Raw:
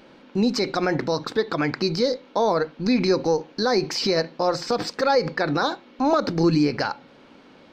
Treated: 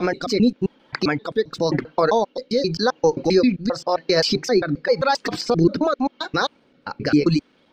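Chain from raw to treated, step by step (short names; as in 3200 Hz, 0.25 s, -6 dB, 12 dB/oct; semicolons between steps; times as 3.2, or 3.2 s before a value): slices in reverse order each 0.132 s, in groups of 7; rotary speaker horn 0.9 Hz; reverb removal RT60 1.8 s; gain +5.5 dB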